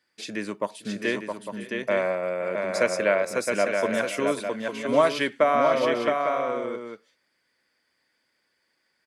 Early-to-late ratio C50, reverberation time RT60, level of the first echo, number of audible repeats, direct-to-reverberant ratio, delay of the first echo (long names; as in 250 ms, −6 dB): no reverb audible, no reverb audible, −17.5 dB, 3, no reverb audible, 519 ms